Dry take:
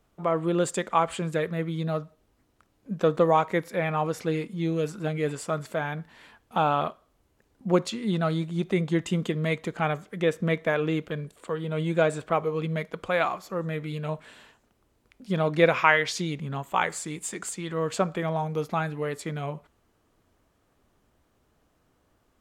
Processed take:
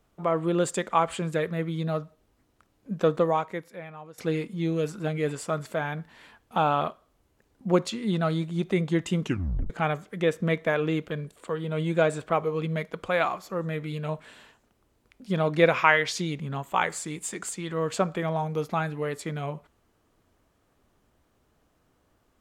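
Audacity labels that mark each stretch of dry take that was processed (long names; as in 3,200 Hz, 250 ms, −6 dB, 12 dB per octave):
3.080000	4.180000	fade out quadratic, to −18.5 dB
9.210000	9.210000	tape stop 0.49 s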